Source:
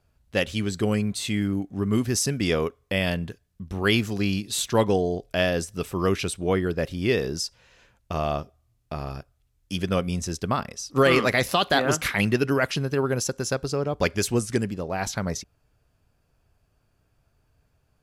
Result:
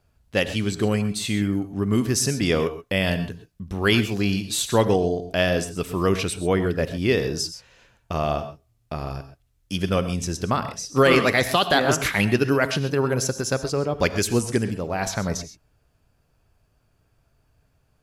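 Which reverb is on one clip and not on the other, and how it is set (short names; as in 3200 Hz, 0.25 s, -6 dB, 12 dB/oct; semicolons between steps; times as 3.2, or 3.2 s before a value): non-linear reverb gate 0.15 s rising, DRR 11 dB; gain +2 dB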